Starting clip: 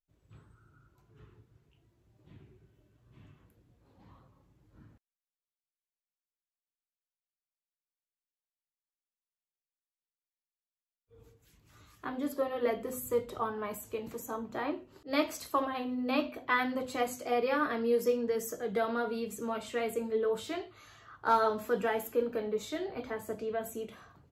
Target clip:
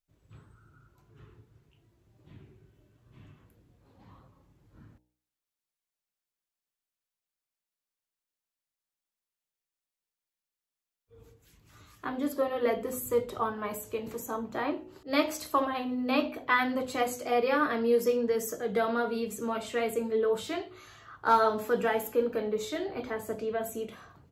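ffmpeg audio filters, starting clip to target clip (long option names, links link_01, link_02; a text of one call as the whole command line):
ffmpeg -i in.wav -af "bandreject=frequency=61.48:width_type=h:width=4,bandreject=frequency=122.96:width_type=h:width=4,bandreject=frequency=184.44:width_type=h:width=4,bandreject=frequency=245.92:width_type=h:width=4,bandreject=frequency=307.4:width_type=h:width=4,bandreject=frequency=368.88:width_type=h:width=4,bandreject=frequency=430.36:width_type=h:width=4,bandreject=frequency=491.84:width_type=h:width=4,bandreject=frequency=553.32:width_type=h:width=4,bandreject=frequency=614.8:width_type=h:width=4,bandreject=frequency=676.28:width_type=h:width=4,bandreject=frequency=737.76:width_type=h:width=4,bandreject=frequency=799.24:width_type=h:width=4,bandreject=frequency=860.72:width_type=h:width=4,bandreject=frequency=922.2:width_type=h:width=4,volume=3.5dB" out.wav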